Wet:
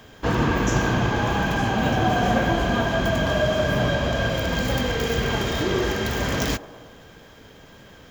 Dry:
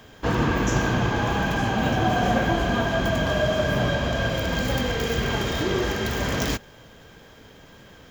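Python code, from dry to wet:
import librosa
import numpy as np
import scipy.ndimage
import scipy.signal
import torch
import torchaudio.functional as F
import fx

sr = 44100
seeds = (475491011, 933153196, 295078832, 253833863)

y = fx.echo_wet_bandpass(x, sr, ms=113, feedback_pct=63, hz=570.0, wet_db=-14)
y = y * 10.0 ** (1.0 / 20.0)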